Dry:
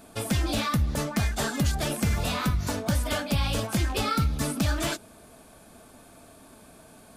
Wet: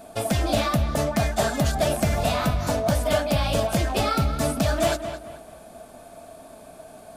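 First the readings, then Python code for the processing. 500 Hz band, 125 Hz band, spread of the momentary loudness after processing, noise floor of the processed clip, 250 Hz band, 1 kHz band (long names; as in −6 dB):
+10.0 dB, +2.0 dB, 3 LU, −46 dBFS, +2.5 dB, +6.0 dB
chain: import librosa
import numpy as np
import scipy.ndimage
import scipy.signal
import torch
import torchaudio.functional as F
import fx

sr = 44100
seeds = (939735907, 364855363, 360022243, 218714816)

p1 = fx.peak_eq(x, sr, hz=660.0, db=12.0, octaves=0.49)
p2 = p1 + fx.echo_filtered(p1, sr, ms=218, feedback_pct=36, hz=3500.0, wet_db=-9.5, dry=0)
y = p2 * librosa.db_to_amplitude(1.5)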